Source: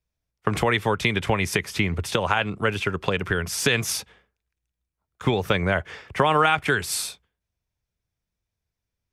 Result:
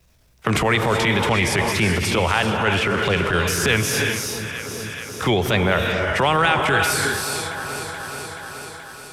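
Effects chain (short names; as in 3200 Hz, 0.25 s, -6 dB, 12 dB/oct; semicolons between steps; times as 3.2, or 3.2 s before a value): wow and flutter 100 cents; non-linear reverb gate 0.4 s rising, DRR 5.5 dB; transient shaper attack -10 dB, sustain +3 dB; on a send: echo with dull and thin repeats by turns 0.214 s, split 980 Hz, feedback 68%, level -13.5 dB; on the sum: three-band squash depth 70%; gain +4.5 dB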